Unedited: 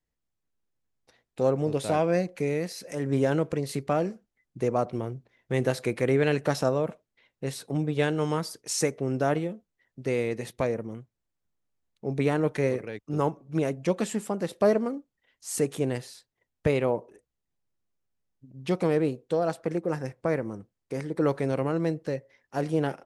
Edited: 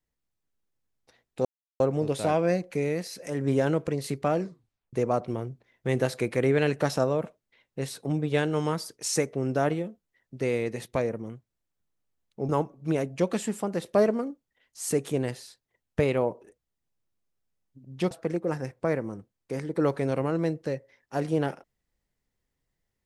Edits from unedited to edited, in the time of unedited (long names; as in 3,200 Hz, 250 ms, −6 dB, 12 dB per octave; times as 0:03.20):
0:01.45: splice in silence 0.35 s
0:04.06: tape stop 0.52 s
0:12.14–0:13.16: remove
0:18.78–0:19.52: remove